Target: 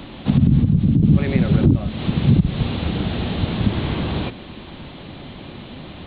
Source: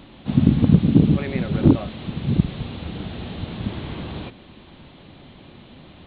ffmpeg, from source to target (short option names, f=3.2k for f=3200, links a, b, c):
-filter_complex "[0:a]acrossover=split=230[a][b];[b]acompressor=threshold=-32dB:ratio=5[c];[a][c]amix=inputs=2:normalize=0,alimiter=limit=-14dB:level=0:latency=1:release=64,asettb=1/sr,asplit=3[d][e][f];[d]atrim=end=0.594[g];[e]atrim=start=0.59:end=1.03,asetpts=PTS-STARTPTS,afade=t=in:d=0.004:c=qsin,afade=t=out:st=0.436:d=0.004:c=qsin,acrossover=split=140[h][i];[i]acompressor=threshold=-34dB:ratio=1.5[j];[h][j]amix=inputs=2:normalize=0[k];[f]atrim=start=1.026[l];[g][k]acrossfade=d=0.004:c1=hsin:c2=qsin[m];[m][l]acrossfade=d=0.004:c1=qsin:c2=hsin,volume=9dB"